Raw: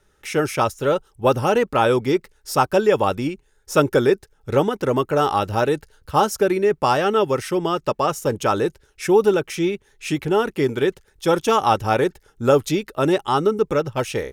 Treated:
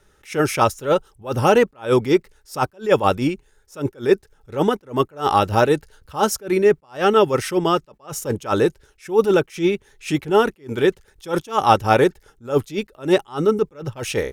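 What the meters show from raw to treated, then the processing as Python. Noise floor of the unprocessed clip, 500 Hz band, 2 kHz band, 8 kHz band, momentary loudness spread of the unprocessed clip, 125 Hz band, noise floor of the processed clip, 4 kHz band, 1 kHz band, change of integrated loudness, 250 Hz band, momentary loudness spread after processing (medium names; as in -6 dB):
-61 dBFS, 0.0 dB, +0.5 dB, +0.5 dB, 7 LU, 0.0 dB, -59 dBFS, +0.5 dB, 0.0 dB, +0.5 dB, +0.5 dB, 11 LU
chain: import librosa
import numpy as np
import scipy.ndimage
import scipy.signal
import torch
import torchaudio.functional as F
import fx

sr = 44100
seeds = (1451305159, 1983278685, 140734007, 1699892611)

y = fx.attack_slew(x, sr, db_per_s=220.0)
y = y * 10.0 ** (4.0 / 20.0)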